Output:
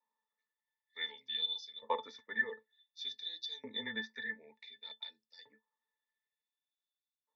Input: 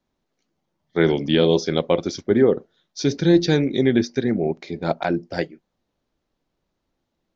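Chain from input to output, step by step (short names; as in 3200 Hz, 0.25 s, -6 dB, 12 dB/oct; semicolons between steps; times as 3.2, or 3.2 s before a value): LFO high-pass saw up 0.55 Hz 950–5600 Hz; frequency shift -18 Hz; octave resonator A, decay 0.1 s; gain +3.5 dB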